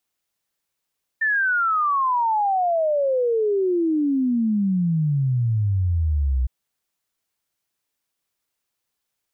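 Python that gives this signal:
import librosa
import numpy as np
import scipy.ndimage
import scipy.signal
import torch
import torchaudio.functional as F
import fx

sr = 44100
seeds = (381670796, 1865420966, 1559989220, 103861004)

y = fx.ess(sr, length_s=5.26, from_hz=1800.0, to_hz=61.0, level_db=-17.5)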